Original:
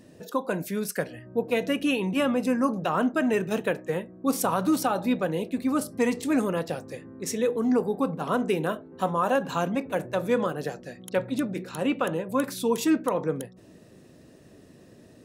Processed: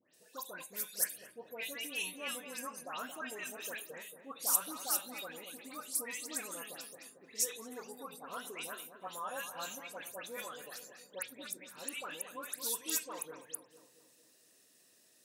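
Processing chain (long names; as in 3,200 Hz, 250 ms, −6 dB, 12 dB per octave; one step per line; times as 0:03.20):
first difference
all-pass dispersion highs, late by 144 ms, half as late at 2,300 Hz
on a send: feedback echo with a low-pass in the loop 226 ms, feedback 56%, low-pass 1,100 Hz, level −8 dB
on the sum: level +1 dB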